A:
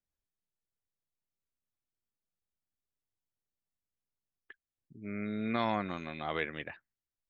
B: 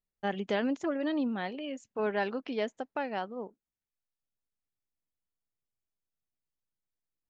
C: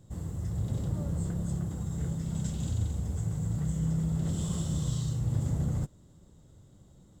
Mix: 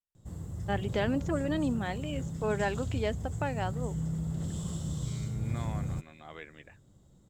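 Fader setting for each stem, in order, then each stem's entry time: −11.5, 0.0, −4.0 decibels; 0.00, 0.45, 0.15 seconds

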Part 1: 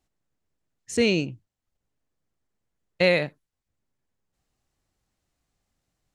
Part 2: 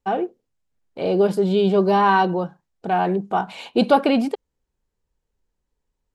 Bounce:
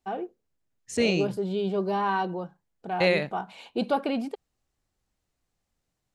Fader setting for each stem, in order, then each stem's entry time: −3.0, −10.0 decibels; 0.00, 0.00 seconds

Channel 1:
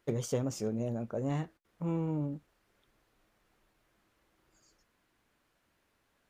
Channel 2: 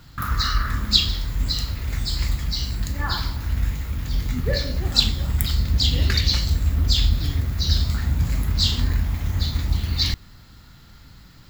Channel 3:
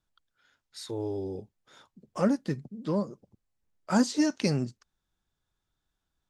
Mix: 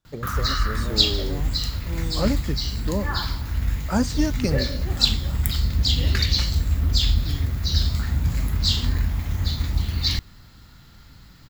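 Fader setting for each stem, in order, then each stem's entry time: −1.5, −1.0, +1.5 decibels; 0.05, 0.05, 0.00 seconds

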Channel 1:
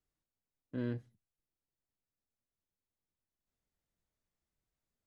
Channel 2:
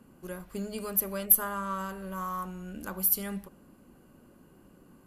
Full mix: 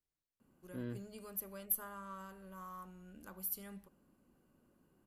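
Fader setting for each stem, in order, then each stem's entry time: −6.0, −14.5 decibels; 0.00, 0.40 seconds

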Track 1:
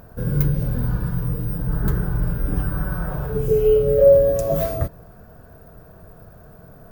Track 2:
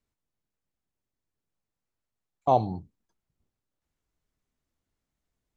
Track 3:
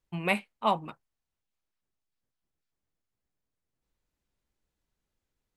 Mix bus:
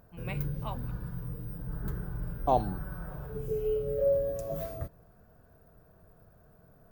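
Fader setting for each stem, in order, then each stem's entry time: −14.5, −4.0, −14.5 decibels; 0.00, 0.00, 0.00 seconds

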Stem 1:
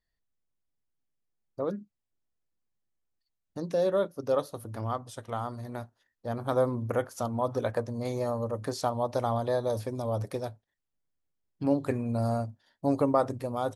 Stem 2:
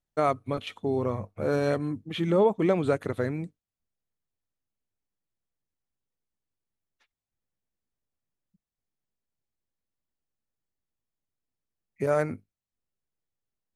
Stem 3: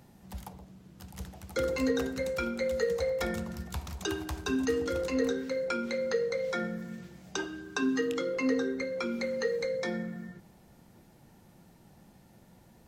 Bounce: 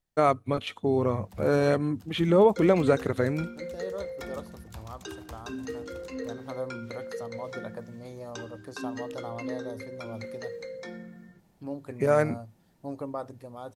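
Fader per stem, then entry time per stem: −10.5, +2.5, −7.5 decibels; 0.00, 0.00, 1.00 seconds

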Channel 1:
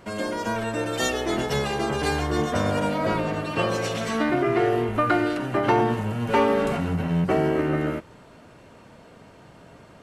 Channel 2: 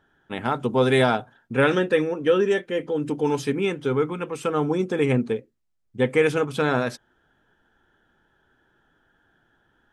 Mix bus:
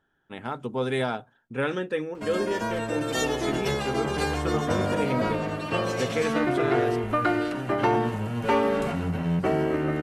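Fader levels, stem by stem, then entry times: −2.5, −8.0 decibels; 2.15, 0.00 seconds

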